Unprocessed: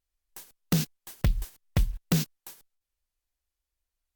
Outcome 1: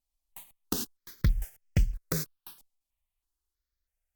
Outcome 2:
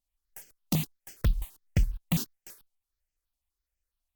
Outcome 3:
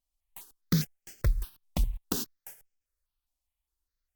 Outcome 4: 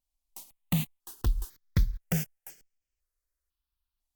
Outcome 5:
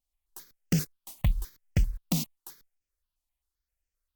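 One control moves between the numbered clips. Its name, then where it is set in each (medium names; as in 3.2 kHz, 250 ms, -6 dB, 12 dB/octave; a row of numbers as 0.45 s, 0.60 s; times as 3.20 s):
stepped phaser, rate: 3.1 Hz, 12 Hz, 4.9 Hz, 2 Hz, 7.6 Hz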